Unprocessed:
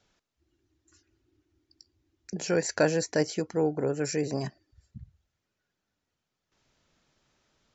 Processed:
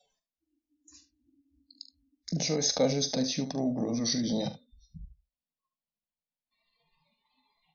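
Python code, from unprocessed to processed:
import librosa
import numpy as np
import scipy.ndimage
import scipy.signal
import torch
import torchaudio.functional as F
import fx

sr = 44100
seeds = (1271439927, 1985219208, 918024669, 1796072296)

p1 = fx.pitch_glide(x, sr, semitones=-7.0, runs='starting unshifted')
p2 = fx.over_compress(p1, sr, threshold_db=-35.0, ratio=-1.0)
p3 = p1 + F.gain(torch.from_numpy(p2), 1.0).numpy()
p4 = fx.noise_reduce_blind(p3, sr, reduce_db=24)
p5 = fx.fixed_phaser(p4, sr, hz=370.0, stages=6)
y = fx.room_early_taps(p5, sr, ms=(43, 73), db=(-13.0, -13.5))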